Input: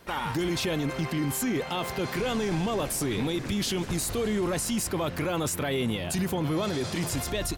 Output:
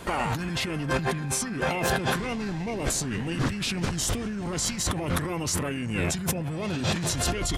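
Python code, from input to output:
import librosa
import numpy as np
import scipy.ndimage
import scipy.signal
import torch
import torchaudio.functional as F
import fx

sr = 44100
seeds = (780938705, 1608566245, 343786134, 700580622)

y = fx.over_compress(x, sr, threshold_db=-35.0, ratio=-1.0)
y = fx.formant_shift(y, sr, semitones=-4)
y = F.gain(torch.from_numpy(y), 6.5).numpy()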